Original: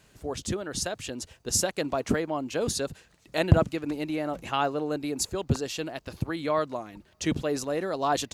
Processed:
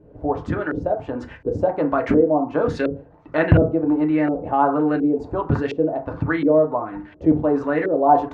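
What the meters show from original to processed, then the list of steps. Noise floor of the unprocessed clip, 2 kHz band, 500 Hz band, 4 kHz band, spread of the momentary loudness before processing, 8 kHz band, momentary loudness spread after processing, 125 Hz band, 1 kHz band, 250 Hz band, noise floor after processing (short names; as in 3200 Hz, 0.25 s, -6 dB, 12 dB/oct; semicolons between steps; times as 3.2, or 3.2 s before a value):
-62 dBFS, +6.5 dB, +10.0 dB, under -10 dB, 10 LU, under -25 dB, 10 LU, +6.0 dB, +10.0 dB, +11.0 dB, -47 dBFS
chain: FDN reverb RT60 0.33 s, low-frequency decay 1×, high-frequency decay 0.45×, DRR 2.5 dB; LFO low-pass saw up 1.4 Hz 400–2300 Hz; in parallel at +3 dB: compressor, threshold -34 dBFS, peak gain reduction 21 dB; on the sum: gain +1.5 dB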